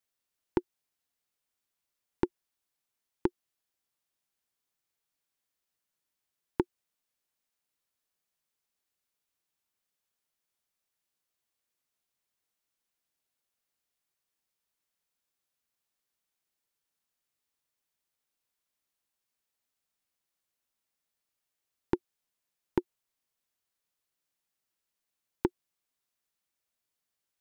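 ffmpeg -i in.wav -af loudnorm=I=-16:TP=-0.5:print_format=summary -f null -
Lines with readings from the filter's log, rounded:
Input Integrated:    -36.4 LUFS
Input True Peak:     -12.5 dBTP
Input LRA:             3.0 LU
Input Threshold:     -46.5 LUFS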